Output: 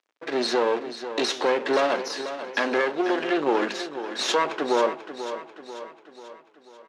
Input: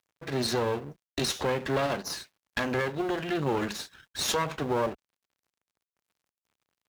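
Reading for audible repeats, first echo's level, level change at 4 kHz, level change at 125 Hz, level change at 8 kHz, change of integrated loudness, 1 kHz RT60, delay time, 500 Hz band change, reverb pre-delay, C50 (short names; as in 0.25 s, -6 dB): 5, -11.0 dB, +4.0 dB, -16.0 dB, -1.0 dB, +5.0 dB, none, 0.49 s, +6.5 dB, none, none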